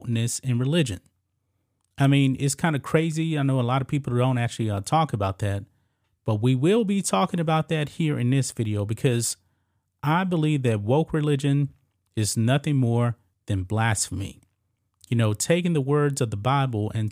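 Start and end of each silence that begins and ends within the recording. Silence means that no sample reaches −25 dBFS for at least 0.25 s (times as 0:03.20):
0:00.94–0:02.00
0:05.59–0:06.28
0:09.33–0:10.04
0:11.66–0:12.17
0:13.11–0:13.50
0:14.26–0:15.04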